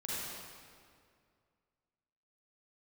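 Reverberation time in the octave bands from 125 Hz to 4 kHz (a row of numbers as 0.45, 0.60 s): 2.5, 2.4, 2.3, 2.1, 1.9, 1.6 s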